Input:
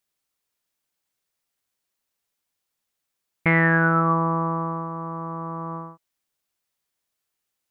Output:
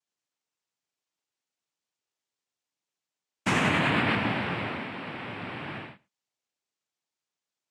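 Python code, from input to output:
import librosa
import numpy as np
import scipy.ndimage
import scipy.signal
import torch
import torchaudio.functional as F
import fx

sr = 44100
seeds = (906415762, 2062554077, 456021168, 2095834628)

p1 = fx.noise_vocoder(x, sr, seeds[0], bands=4)
p2 = p1 + fx.echo_single(p1, sr, ms=109, db=-24.0, dry=0)
y = p2 * librosa.db_to_amplitude(-5.5)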